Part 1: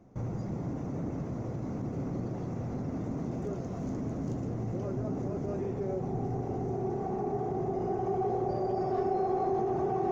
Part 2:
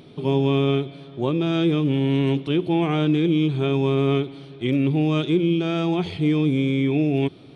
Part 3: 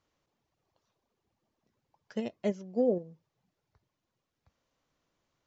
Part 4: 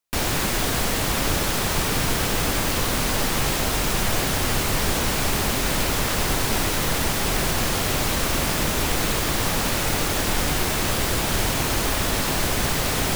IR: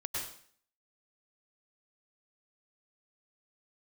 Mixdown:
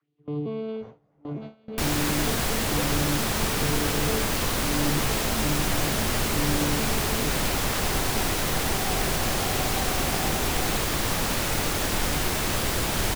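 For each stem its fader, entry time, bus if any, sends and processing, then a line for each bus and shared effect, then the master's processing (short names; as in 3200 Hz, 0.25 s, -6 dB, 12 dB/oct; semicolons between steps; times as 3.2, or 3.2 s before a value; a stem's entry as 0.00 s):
-12.5 dB, 0.65 s, no send, band shelf 1100 Hz +13.5 dB 2.8 oct; detuned doubles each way 43 cents
-10.0 dB, 0.00 s, send -15 dB, arpeggiated vocoder bare fifth, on D3, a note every 0.452 s; comb 2.8 ms, depth 46%; vibrato 0.59 Hz 8.6 cents
-4.5 dB, 0.00 s, no send, LFO high-pass sine 2.1 Hz 400–3600 Hz; three-band squash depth 70%
-3.0 dB, 1.65 s, no send, dry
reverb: on, RT60 0.55 s, pre-delay 93 ms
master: gate with hold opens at -28 dBFS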